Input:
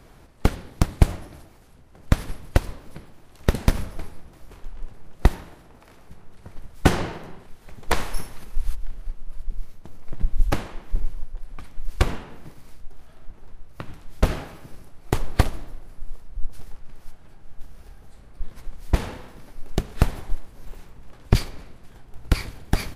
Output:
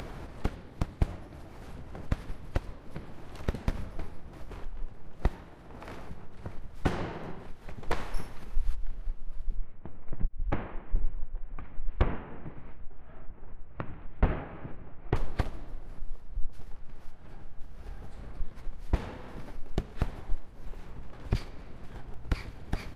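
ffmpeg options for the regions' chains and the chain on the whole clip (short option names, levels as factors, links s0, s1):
-filter_complex "[0:a]asettb=1/sr,asplit=3[s0][s1][s2];[s0]atrim=end=9.564[s3];[s1]atrim=start=9.56:end=15.16,asetpts=PTS-STARTPTS,afade=t=in:d=0.004:c=qsin,afade=t=out:st=5.596:d=0.004:c=qsin,lowpass=f=2600:w=0.5412,lowpass=f=2600:w=1.3066,asoftclip=type=hard:threshold=0.316[s4];[s2]atrim=start=15.156[s5];[s3][s4]acrossfade=d=0.004:c1=hsin:c2=qsin[s6];[s6][s5]acrossfade=d=0.004:c1=qsin:c2=hsin,lowpass=f=2700:p=1,acompressor=mode=upward:threshold=0.0501:ratio=2.5,alimiter=limit=0.282:level=0:latency=1:release=352,volume=0.708"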